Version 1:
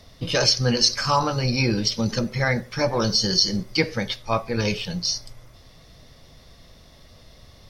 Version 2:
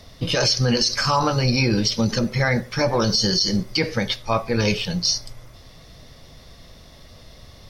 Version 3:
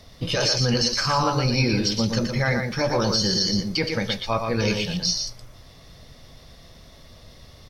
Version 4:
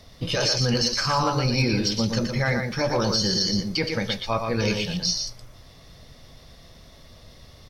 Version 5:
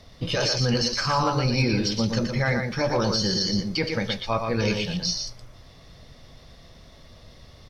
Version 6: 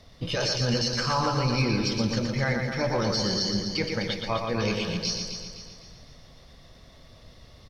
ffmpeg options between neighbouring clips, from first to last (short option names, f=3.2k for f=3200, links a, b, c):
-af "alimiter=limit=-13.5dB:level=0:latency=1:release=51,volume=4dB"
-af "aecho=1:1:119:0.562,volume=-3dB"
-af "asoftclip=type=hard:threshold=-12dB,volume=-1dB"
-af "highshelf=f=8.7k:g=-10"
-af "aecho=1:1:255|510|765|1020|1275:0.398|0.171|0.0736|0.0317|0.0136,volume=-3dB"